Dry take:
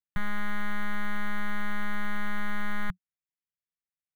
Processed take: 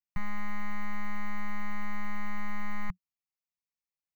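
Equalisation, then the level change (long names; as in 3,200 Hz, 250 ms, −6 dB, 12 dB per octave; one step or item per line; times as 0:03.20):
phaser with its sweep stopped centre 2,300 Hz, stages 8
−1.5 dB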